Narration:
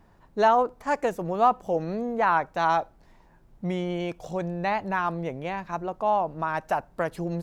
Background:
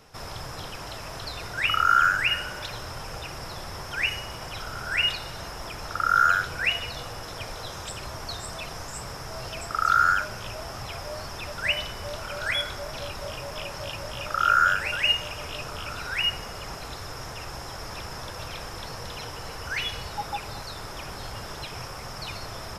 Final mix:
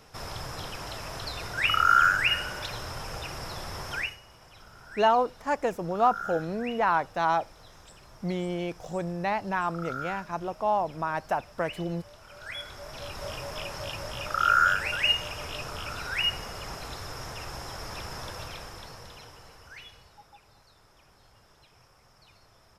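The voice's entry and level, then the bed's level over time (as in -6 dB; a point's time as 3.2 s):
4.60 s, -2.0 dB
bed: 3.96 s -0.5 dB
4.18 s -16.5 dB
12.18 s -16.5 dB
13.27 s -1.5 dB
18.31 s -1.5 dB
20.32 s -22.5 dB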